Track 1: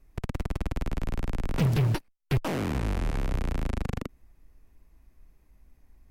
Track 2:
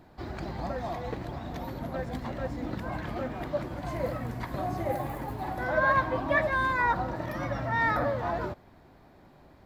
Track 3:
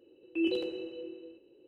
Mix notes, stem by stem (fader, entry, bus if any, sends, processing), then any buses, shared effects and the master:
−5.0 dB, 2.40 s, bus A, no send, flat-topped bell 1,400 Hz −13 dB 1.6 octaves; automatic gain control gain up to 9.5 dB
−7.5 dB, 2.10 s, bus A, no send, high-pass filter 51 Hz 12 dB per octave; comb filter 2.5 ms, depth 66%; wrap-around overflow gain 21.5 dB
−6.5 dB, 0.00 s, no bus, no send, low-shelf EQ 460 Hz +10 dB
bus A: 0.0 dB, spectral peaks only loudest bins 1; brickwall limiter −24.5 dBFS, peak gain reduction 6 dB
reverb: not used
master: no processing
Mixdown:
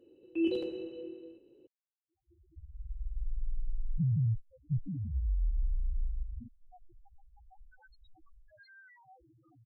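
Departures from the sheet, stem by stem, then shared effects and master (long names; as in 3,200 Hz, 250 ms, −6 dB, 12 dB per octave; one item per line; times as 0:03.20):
stem 1: missing flat-topped bell 1,400 Hz −13 dB 1.6 octaves
stem 2 −7.5 dB → −19.0 dB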